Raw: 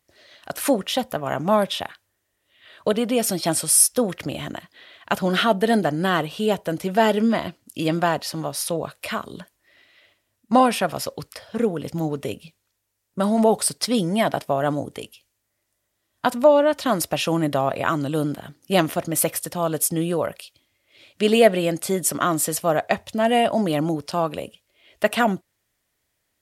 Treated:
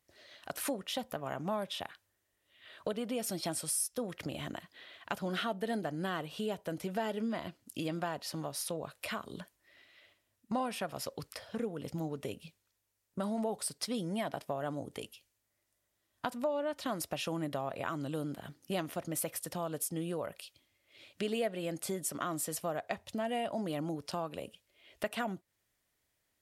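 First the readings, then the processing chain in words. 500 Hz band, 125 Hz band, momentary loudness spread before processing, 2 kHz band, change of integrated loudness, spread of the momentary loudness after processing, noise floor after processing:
−16.0 dB, −13.5 dB, 13 LU, −15.0 dB, −15.5 dB, 10 LU, −81 dBFS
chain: downward compressor 2.5 to 1, threshold −31 dBFS, peak gain reduction 14.5 dB
level −6 dB

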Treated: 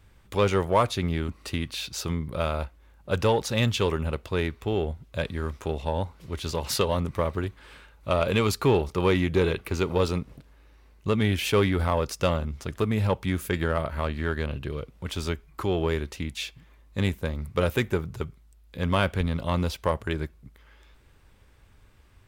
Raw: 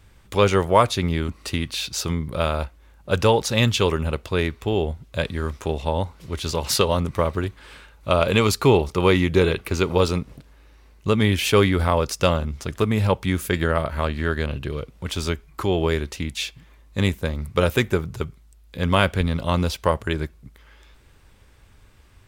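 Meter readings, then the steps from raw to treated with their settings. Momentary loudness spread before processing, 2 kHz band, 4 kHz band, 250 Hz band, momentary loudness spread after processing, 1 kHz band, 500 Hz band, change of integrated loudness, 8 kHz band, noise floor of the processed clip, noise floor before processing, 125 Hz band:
11 LU, −5.5 dB, −6.5 dB, −4.5 dB, 11 LU, −5.5 dB, −5.0 dB, −5.0 dB, −7.0 dB, −56 dBFS, −52 dBFS, −4.5 dB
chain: parametric band 6,900 Hz −3 dB 2 octaves
in parallel at −6 dB: hard clipping −16 dBFS, distortion −10 dB
on the sum: level −7.5 dB

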